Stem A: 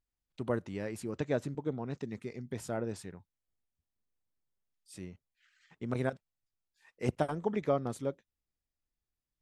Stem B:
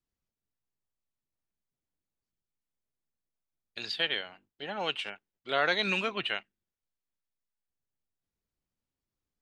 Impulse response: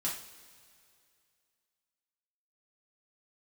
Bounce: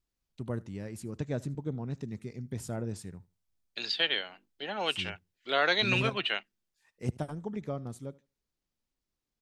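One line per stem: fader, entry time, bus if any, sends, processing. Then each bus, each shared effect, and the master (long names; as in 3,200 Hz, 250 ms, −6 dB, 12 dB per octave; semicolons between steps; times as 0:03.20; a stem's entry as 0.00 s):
−6.5 dB, 0.00 s, no send, echo send −23 dB, speech leveller 2 s
+0.5 dB, 0.00 s, no send, no echo send, three-way crossover with the lows and the highs turned down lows −17 dB, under 240 Hz, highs −14 dB, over 6,300 Hz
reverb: not used
echo: repeating echo 77 ms, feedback 19%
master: bass and treble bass +10 dB, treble +7 dB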